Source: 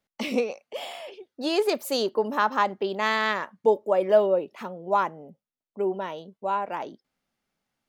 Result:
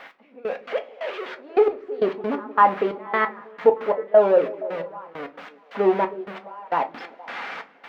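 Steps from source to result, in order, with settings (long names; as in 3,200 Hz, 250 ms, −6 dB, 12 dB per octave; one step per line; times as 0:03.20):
spike at every zero crossing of −16.5 dBFS
Bessel low-pass filter 1,300 Hz, order 4
low-shelf EQ 330 Hz −11 dB
mains-hum notches 60/120/180 Hz
in parallel at +2 dB: brickwall limiter −20.5 dBFS, peak gain reduction 8.5 dB
on the sum: automatic gain control gain up to 10 dB
bit-depth reduction 12 bits, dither triangular
gate pattern "x...x.x..xxx.." 134 BPM −24 dB
echo through a band-pass that steps 157 ms, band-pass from 240 Hz, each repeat 0.7 octaves, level −11.5 dB
on a send at −6 dB: convolution reverb RT60 0.30 s, pre-delay 4 ms
on the sum: level −3.5 dB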